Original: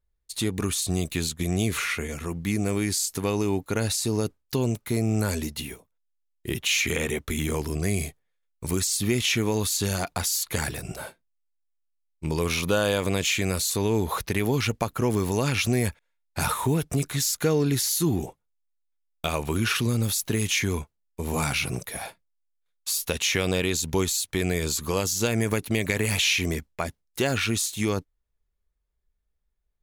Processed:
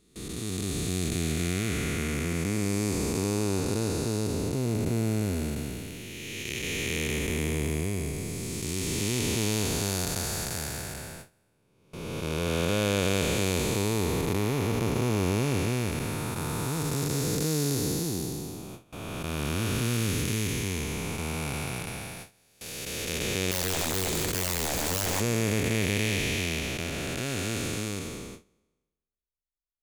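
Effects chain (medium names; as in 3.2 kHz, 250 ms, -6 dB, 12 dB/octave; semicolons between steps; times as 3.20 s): spectral blur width 905 ms; 23.51–25.20 s: integer overflow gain 23.5 dB; gate with hold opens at -32 dBFS; trim +2 dB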